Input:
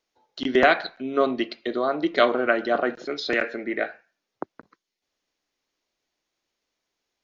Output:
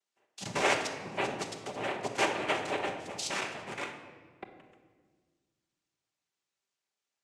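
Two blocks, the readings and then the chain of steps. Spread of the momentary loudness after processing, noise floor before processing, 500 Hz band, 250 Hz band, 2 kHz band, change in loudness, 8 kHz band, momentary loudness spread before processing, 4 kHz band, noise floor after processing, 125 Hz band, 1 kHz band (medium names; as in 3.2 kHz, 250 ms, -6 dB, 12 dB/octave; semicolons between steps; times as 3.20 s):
19 LU, -83 dBFS, -12.5 dB, -14.0 dB, -8.5 dB, -9.5 dB, no reading, 12 LU, -4.5 dB, under -85 dBFS, 0.0 dB, -7.5 dB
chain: high-pass 600 Hz 6 dB/octave; noise-vocoded speech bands 4; dynamic bell 4.9 kHz, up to +4 dB, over -40 dBFS, Q 1; simulated room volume 1600 m³, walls mixed, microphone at 1.2 m; trim -9 dB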